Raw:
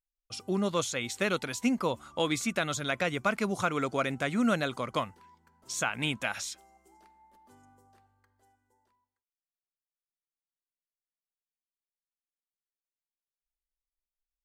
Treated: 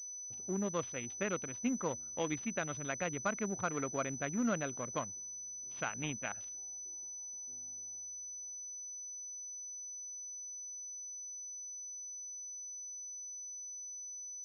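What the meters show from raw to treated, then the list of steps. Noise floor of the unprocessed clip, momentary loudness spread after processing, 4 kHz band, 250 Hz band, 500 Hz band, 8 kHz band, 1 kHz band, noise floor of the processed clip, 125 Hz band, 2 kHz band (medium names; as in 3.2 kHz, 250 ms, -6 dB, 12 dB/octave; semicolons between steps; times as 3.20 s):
under -85 dBFS, 7 LU, -15.0 dB, -7.0 dB, -7.0 dB, +5.0 dB, -8.0 dB, -46 dBFS, -6.5 dB, -9.5 dB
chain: local Wiener filter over 41 samples; class-D stage that switches slowly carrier 6 kHz; trim -6.5 dB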